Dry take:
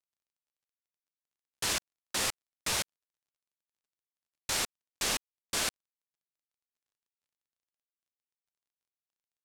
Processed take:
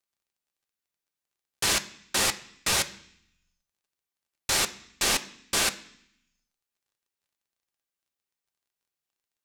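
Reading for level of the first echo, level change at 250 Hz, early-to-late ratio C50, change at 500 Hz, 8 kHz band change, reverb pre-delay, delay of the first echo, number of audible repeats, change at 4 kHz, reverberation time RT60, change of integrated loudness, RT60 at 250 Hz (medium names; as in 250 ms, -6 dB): no echo, +7.0 dB, 16.0 dB, +6.5 dB, +6.5 dB, 3 ms, no echo, no echo, +6.5 dB, 0.65 s, +6.5 dB, 0.90 s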